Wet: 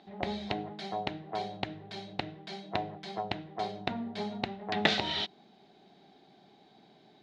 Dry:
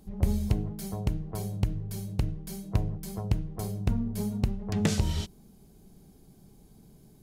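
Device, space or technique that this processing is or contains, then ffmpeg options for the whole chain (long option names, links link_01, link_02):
phone earpiece: -af "highpass=440,equalizer=frequency=480:width_type=q:width=4:gain=-7,equalizer=frequency=740:width_type=q:width=4:gain=7,equalizer=frequency=1100:width_type=q:width=4:gain=-4,equalizer=frequency=1900:width_type=q:width=4:gain=5,equalizer=frequency=3800:width_type=q:width=4:gain=9,lowpass=frequency=3900:width=0.5412,lowpass=frequency=3900:width=1.3066,volume=6.5dB"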